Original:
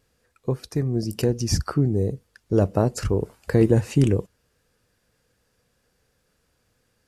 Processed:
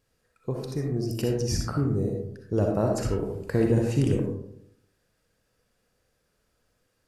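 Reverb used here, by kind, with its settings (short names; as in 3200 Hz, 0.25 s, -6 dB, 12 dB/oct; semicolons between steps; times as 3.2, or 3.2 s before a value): digital reverb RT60 0.73 s, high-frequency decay 0.35×, pre-delay 20 ms, DRR 0.5 dB; gain -6 dB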